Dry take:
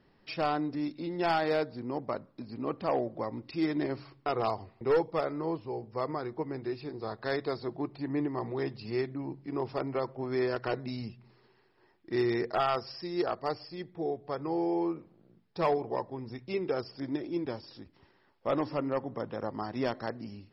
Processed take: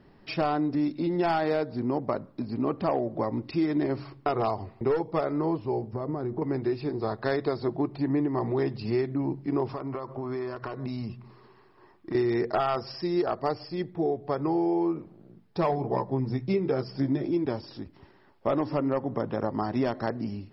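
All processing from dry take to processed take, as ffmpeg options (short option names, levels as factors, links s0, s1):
-filter_complex "[0:a]asettb=1/sr,asplit=3[s0][s1][s2];[s0]atrim=end=5.934[s3];[s1]atrim=start=5.93:end=6.42,asetpts=PTS-STARTPTS,afade=t=in:d=0.004:c=qsin,afade=t=out:st=0.486:d=0.004:c=qsin,tiltshelf=f=710:g=7,acompressor=threshold=0.0158:ratio=5:attack=3.2:release=140:knee=1:detection=peak[s4];[s2]atrim=start=6.416[s5];[s3][s4]acrossfade=d=0.004:c1=hsin:c2=qsin[s6];[s6][s5]acrossfade=d=0.004:c1=qsin:c2=hsin,asettb=1/sr,asplit=3[s7][s8][s9];[s7]atrim=end=9.694[s10];[s8]atrim=start=9.69:end=12.15,asetpts=PTS-STARTPTS,afade=t=in:d=0.004:c=qsin,afade=t=out:st=2.456:d=0.004:c=qsin,equalizer=f=1100:t=o:w=0.3:g=10,acompressor=threshold=0.0126:ratio=12:attack=3.2:release=140:knee=1:detection=peak[s11];[s9]atrim=start=12.146[s12];[s10][s11]acrossfade=d=0.004:c1=hsin:c2=qsin[s13];[s13][s12]acrossfade=d=0.004:c1=qsin:c2=hsin,asettb=1/sr,asplit=3[s14][s15][s16];[s14]atrim=end=15.684[s17];[s15]atrim=start=15.68:end=17.31,asetpts=PTS-STARTPTS,afade=t=in:d=0.004:c=qsin,afade=t=out:st=1.626:d=0.004:c=qsin,equalizer=f=160:w=2.3:g=7.5,bandreject=f=2800:w=15,asplit=2[s18][s19];[s19]adelay=15,volume=0.501[s20];[s18][s20]amix=inputs=2:normalize=0,atrim=end_sample=71883[s21];[s16]atrim=start=17.306[s22];[s17][s21]acrossfade=d=0.004:c1=hsin:c2=qsin[s23];[s23][s22]acrossfade=d=0.004:c1=qsin:c2=hsin,tiltshelf=f=1300:g=3.5,bandreject=f=500:w=12,acompressor=threshold=0.0355:ratio=6,volume=2.11"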